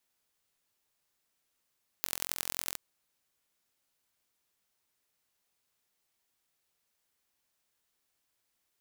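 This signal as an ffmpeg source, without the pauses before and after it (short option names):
-f lavfi -i "aevalsrc='0.668*eq(mod(n,1014),0)*(0.5+0.5*eq(mod(n,4056),0))':d=0.73:s=44100"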